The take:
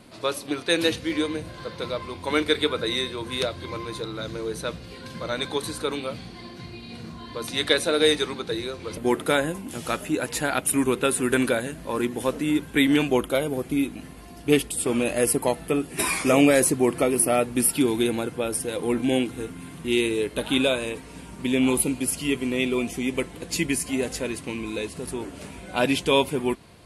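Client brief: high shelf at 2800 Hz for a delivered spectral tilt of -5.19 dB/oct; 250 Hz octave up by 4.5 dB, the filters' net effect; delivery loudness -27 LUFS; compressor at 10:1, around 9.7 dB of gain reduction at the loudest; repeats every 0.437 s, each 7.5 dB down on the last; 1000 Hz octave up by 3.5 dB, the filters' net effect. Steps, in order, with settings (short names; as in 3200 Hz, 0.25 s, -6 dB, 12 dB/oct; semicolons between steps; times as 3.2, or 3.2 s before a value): bell 250 Hz +5 dB; bell 1000 Hz +5.5 dB; high shelf 2800 Hz -8.5 dB; compressor 10:1, threshold -19 dBFS; feedback echo 0.437 s, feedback 42%, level -7.5 dB; gain -1 dB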